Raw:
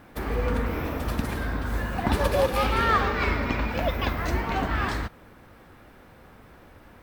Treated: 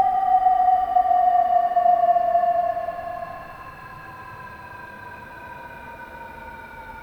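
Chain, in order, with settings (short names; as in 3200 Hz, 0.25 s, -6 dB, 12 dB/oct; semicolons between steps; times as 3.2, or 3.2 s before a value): painted sound fall, 4.36–6.07, 680–5500 Hz -24 dBFS; band-limited delay 0.384 s, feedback 77%, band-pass 920 Hz, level -24 dB; Paulstretch 29×, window 0.10 s, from 5.98; gain +6 dB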